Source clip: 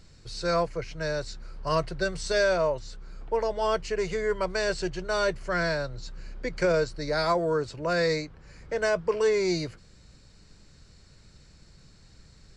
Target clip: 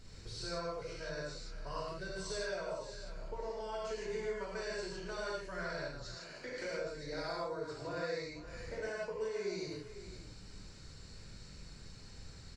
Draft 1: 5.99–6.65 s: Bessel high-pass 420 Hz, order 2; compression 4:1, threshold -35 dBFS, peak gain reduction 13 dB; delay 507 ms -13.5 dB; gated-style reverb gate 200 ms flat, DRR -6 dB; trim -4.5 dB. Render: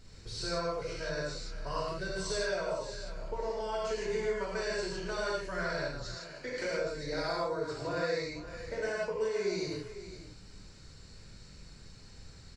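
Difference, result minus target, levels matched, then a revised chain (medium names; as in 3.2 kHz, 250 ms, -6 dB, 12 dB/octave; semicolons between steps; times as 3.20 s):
compression: peak gain reduction -6 dB
5.99–6.65 s: Bessel high-pass 420 Hz, order 2; compression 4:1, threshold -43 dBFS, peak gain reduction 19 dB; delay 507 ms -13.5 dB; gated-style reverb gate 200 ms flat, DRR -6 dB; trim -4.5 dB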